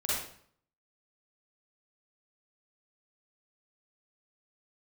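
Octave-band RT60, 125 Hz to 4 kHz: 0.70 s, 0.65 s, 0.60 s, 0.55 s, 0.50 s, 0.50 s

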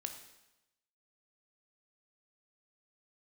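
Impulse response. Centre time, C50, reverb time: 19 ms, 8.0 dB, 0.95 s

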